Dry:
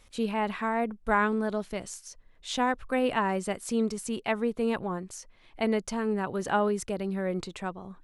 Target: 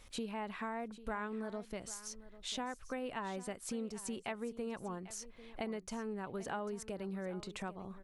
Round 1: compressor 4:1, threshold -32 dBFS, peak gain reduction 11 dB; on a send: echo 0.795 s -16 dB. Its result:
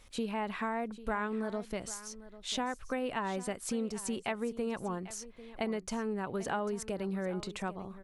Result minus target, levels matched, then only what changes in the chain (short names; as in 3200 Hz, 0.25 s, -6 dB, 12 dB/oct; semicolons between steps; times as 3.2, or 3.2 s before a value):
compressor: peak gain reduction -6 dB
change: compressor 4:1, threshold -40 dBFS, peak gain reduction 17 dB